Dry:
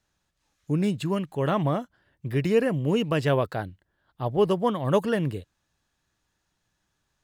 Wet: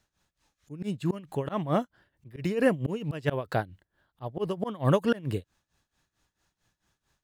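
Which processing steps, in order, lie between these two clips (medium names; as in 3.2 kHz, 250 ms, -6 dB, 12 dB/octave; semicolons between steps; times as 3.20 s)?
tremolo 4.5 Hz, depth 86%; slow attack 190 ms; trim +4 dB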